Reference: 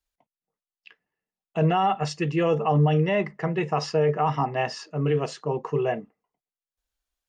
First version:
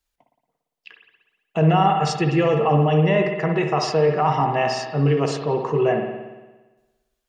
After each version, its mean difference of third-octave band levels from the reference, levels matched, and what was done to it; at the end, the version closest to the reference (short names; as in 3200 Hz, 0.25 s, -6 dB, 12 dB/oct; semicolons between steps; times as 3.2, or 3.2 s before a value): 4.5 dB: in parallel at 0 dB: limiter -20.5 dBFS, peak gain reduction 9 dB; on the sum: spring tank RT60 1.2 s, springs 57 ms, chirp 35 ms, DRR 4 dB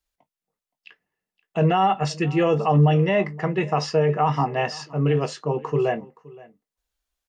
1.5 dB: doubler 21 ms -12.5 dB; echo 0.521 s -22 dB; gain +2.5 dB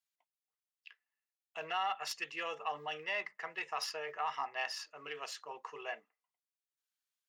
10.0 dB: tracing distortion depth 0.028 ms; HPF 1300 Hz 12 dB/oct; gain -4.5 dB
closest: second